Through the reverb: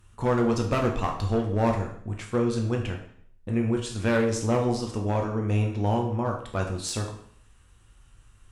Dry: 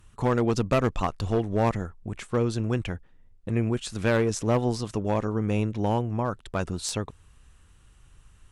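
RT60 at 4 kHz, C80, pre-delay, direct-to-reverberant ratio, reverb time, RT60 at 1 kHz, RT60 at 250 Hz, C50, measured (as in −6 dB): 0.55 s, 10.0 dB, 5 ms, 1.0 dB, 0.60 s, 0.60 s, 0.60 s, 7.0 dB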